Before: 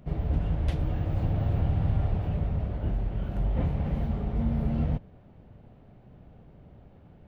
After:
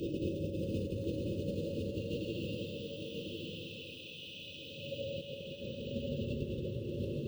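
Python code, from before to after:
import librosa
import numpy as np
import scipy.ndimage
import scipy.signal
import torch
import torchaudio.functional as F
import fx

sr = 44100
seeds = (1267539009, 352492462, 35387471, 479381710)

y = fx.dereverb_blind(x, sr, rt60_s=0.78)
y = fx.filter_lfo_highpass(y, sr, shape='sine', hz=3.2, low_hz=330.0, high_hz=2600.0, q=1.5)
y = fx.paulstretch(y, sr, seeds[0], factor=18.0, window_s=0.1, from_s=1.12)
y = fx.high_shelf(y, sr, hz=2600.0, db=6.5)
y = y + 10.0 ** (-17.5 / 20.0) * np.pad(y, (int(266 * sr / 1000.0), 0))[:len(y)]
y = fx.over_compress(y, sr, threshold_db=-43.0, ratio=-0.5)
y = fx.brickwall_bandstop(y, sr, low_hz=580.0, high_hz=2500.0)
y = fx.low_shelf(y, sr, hz=370.0, db=11.0)
y = y + 10.0 ** (-3.5 / 20.0) * np.pad(y, (int(1042 * sr / 1000.0), 0))[:len(y)]
y = fx.echo_crushed(y, sr, ms=619, feedback_pct=35, bits=10, wet_db=-14.5)
y = y * librosa.db_to_amplitude(2.5)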